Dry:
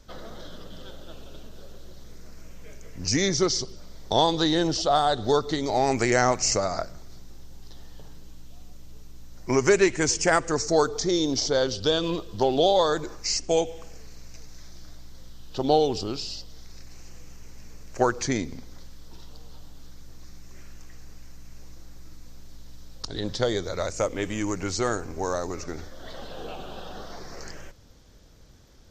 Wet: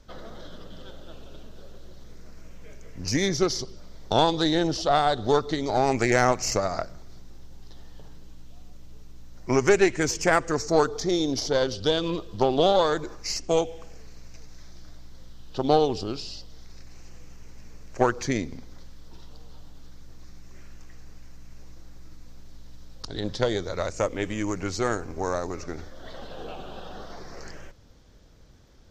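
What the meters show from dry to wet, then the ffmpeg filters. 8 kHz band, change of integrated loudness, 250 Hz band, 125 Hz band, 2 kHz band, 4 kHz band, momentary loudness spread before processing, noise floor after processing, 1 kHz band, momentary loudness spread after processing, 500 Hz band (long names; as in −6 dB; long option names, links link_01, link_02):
−4.5 dB, −0.5 dB, 0.0 dB, +0.5 dB, +0.5 dB, −2.5 dB, 20 LU, −45 dBFS, 0.0 dB, 21 LU, 0.0 dB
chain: -af "highshelf=frequency=5800:gain=-7.5,aeval=exprs='0.447*(cos(1*acos(clip(val(0)/0.447,-1,1)))-cos(1*PI/2))+0.0501*(cos(4*acos(clip(val(0)/0.447,-1,1)))-cos(4*PI/2))+0.00891*(cos(6*acos(clip(val(0)/0.447,-1,1)))-cos(6*PI/2))+0.00447*(cos(7*acos(clip(val(0)/0.447,-1,1)))-cos(7*PI/2))+0.00282*(cos(8*acos(clip(val(0)/0.447,-1,1)))-cos(8*PI/2))':channel_layout=same"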